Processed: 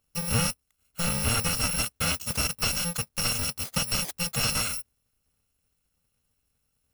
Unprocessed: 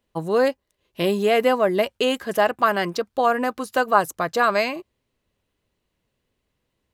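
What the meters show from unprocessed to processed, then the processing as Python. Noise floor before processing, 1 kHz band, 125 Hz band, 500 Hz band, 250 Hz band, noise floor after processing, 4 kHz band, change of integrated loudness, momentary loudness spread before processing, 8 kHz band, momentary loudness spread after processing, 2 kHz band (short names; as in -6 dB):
-77 dBFS, -15.0 dB, +5.5 dB, -19.5 dB, -8.0 dB, -77 dBFS, +2.5 dB, -5.0 dB, 6 LU, +13.5 dB, 5 LU, -7.0 dB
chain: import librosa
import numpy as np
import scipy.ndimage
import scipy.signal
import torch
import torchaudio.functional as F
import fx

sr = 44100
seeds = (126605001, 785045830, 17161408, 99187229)

y = fx.bit_reversed(x, sr, seeds[0], block=128)
y = fx.slew_limit(y, sr, full_power_hz=360.0)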